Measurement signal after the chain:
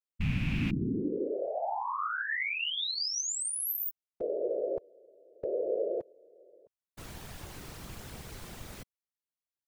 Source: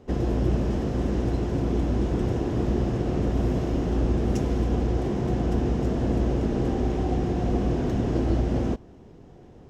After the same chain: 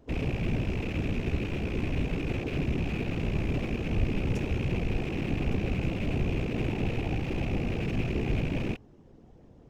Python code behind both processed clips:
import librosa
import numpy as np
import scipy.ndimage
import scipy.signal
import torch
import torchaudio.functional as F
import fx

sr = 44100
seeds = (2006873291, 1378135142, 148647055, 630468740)

y = fx.rattle_buzz(x, sr, strikes_db=-30.0, level_db=-19.0)
y = fx.whisperise(y, sr, seeds[0])
y = fx.low_shelf(y, sr, hz=190.0, db=6.0)
y = y * librosa.db_to_amplitude(-8.5)